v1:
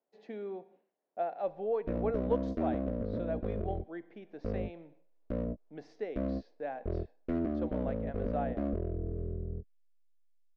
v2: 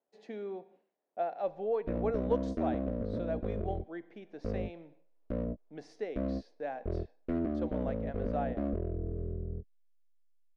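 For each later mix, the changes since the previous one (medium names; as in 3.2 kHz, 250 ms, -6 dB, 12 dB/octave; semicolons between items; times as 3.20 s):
speech: remove distance through air 170 m; master: add distance through air 51 m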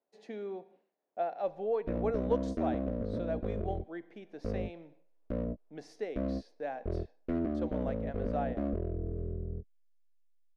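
master: remove distance through air 51 m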